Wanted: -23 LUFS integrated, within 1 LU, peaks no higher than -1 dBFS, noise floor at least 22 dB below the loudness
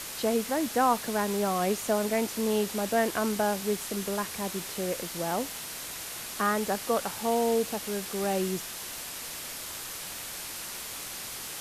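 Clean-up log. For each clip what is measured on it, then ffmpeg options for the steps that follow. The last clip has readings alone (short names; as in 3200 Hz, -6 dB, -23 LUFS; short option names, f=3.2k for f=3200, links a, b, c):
noise floor -39 dBFS; noise floor target -52 dBFS; loudness -30.0 LUFS; peak -11.5 dBFS; loudness target -23.0 LUFS
-> -af "afftdn=nr=13:nf=-39"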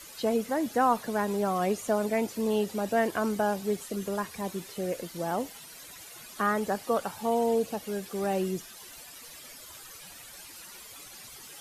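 noise floor -48 dBFS; noise floor target -52 dBFS
-> -af "afftdn=nr=6:nf=-48"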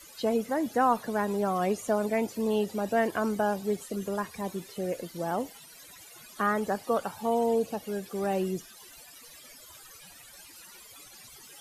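noise floor -51 dBFS; noise floor target -52 dBFS
-> -af "afftdn=nr=6:nf=-51"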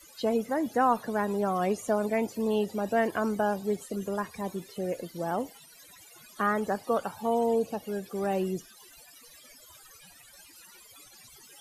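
noise floor -54 dBFS; loudness -29.5 LUFS; peak -12.0 dBFS; loudness target -23.0 LUFS
-> -af "volume=6.5dB"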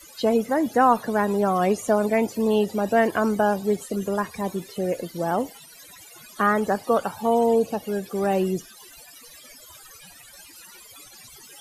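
loudness -23.0 LUFS; peak -5.5 dBFS; noise floor -47 dBFS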